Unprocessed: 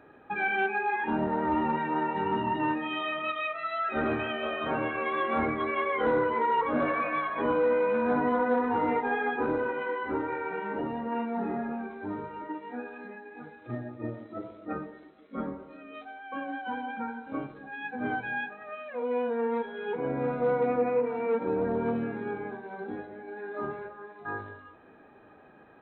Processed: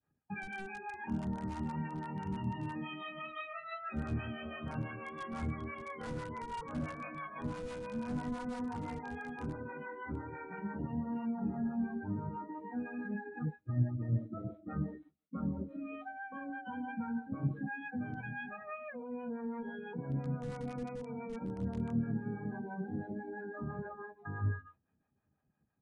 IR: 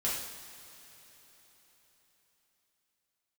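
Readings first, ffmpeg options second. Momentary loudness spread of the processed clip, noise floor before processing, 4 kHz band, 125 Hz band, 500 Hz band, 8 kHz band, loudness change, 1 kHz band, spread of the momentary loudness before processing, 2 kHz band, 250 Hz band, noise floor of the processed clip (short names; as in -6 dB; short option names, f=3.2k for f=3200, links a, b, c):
7 LU, -54 dBFS, under -10 dB, +5.0 dB, -16.0 dB, n/a, -9.5 dB, -14.0 dB, 14 LU, -12.0 dB, -5.0 dB, -78 dBFS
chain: -filter_complex "[0:a]agate=range=-33dB:threshold=-44dB:ratio=3:detection=peak,afftdn=nr=22:nf=-39,asplit=2[a][b];[b]aeval=exprs='(mod(10.6*val(0)+1,2)-1)/10.6':c=same,volume=-11dB[c];[a][c]amix=inputs=2:normalize=0,equalizer=f=80:t=o:w=0.3:g=8,areverse,acompressor=threshold=-40dB:ratio=16,areverse,alimiter=level_in=16.5dB:limit=-24dB:level=0:latency=1:release=134,volume=-16.5dB,acontrast=58,lowshelf=f=250:t=q:w=1.5:g=13.5,acrossover=split=530[d][e];[d]aeval=exprs='val(0)*(1-0.7/2+0.7/2*cos(2*PI*6*n/s))':c=same[f];[e]aeval=exprs='val(0)*(1-0.7/2-0.7/2*cos(2*PI*6*n/s))':c=same[g];[f][g]amix=inputs=2:normalize=0,aresample=22050,aresample=44100,volume=2dB"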